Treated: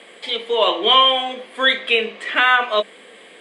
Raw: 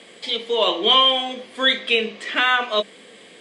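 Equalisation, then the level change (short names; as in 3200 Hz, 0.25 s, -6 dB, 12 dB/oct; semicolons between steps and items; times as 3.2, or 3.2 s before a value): HPF 590 Hz 6 dB/oct; bell 5600 Hz -12.5 dB 1.3 oct; +6.0 dB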